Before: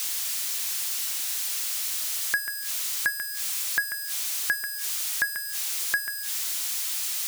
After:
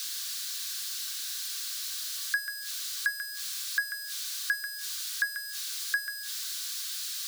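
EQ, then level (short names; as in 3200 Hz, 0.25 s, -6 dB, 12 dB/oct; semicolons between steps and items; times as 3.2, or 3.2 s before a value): rippled Chebyshev high-pass 1100 Hz, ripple 9 dB; 0.0 dB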